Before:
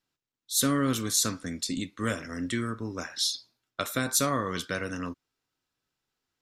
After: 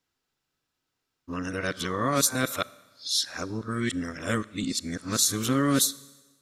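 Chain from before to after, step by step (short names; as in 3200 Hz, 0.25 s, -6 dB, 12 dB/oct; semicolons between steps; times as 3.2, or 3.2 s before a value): whole clip reversed; Schroeder reverb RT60 1.2 s, combs from 29 ms, DRR 20 dB; gain +2 dB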